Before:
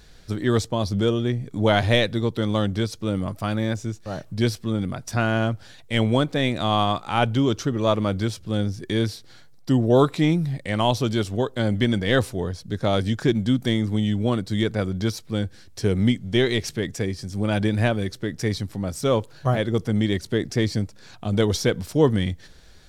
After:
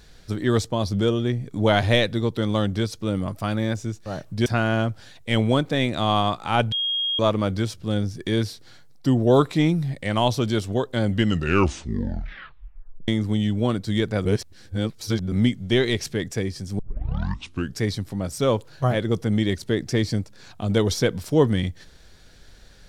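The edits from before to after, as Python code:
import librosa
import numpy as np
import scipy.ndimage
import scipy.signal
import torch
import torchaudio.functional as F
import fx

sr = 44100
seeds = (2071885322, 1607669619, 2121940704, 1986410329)

y = fx.edit(x, sr, fx.cut(start_s=4.46, length_s=0.63),
    fx.bleep(start_s=7.35, length_s=0.47, hz=3260.0, db=-21.5),
    fx.tape_stop(start_s=11.7, length_s=2.01),
    fx.reverse_span(start_s=14.88, length_s=1.07),
    fx.tape_start(start_s=17.42, length_s=1.02), tone=tone)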